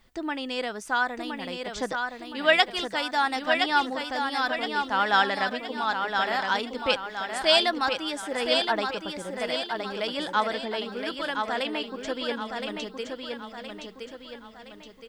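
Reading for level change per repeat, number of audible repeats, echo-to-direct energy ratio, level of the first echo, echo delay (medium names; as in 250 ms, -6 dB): -7.0 dB, 5, -4.0 dB, -5.0 dB, 1018 ms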